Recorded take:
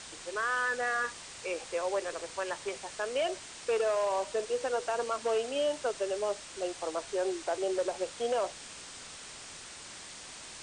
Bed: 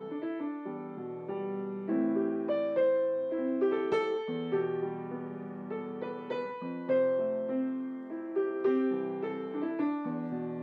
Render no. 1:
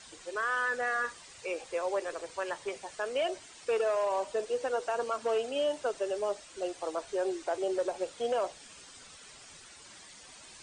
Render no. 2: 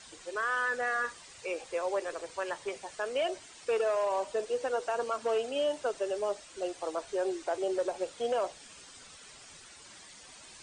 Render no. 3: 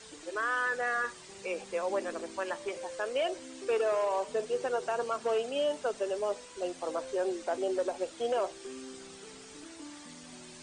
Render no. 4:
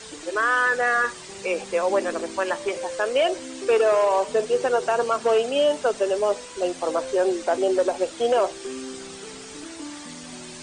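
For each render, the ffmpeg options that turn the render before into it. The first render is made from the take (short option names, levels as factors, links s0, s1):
-af "afftdn=nr=10:nf=-47"
-af anull
-filter_complex "[1:a]volume=0.15[s0];[0:a][s0]amix=inputs=2:normalize=0"
-af "volume=3.16"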